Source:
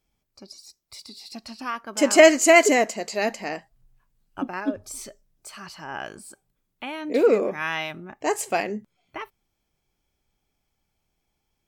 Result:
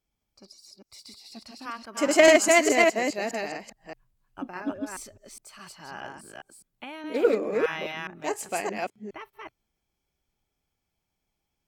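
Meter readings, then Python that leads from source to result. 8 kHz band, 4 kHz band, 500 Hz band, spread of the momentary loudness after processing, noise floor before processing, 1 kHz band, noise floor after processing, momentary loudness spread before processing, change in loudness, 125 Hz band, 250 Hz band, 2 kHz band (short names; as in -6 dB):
-3.0 dB, -2.0 dB, -3.0 dB, 23 LU, -77 dBFS, -3.5 dB, -82 dBFS, 24 LU, -3.0 dB, -4.0 dB, -3.5 dB, -2.5 dB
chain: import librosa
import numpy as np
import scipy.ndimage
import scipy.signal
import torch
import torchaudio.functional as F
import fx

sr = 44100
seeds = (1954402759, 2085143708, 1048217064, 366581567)

y = fx.reverse_delay(x, sr, ms=207, wet_db=-1.0)
y = fx.cheby_harmonics(y, sr, harmonics=(3,), levels_db=(-17,), full_scale_db=-0.5)
y = y * librosa.db_to_amplitude(-2.0)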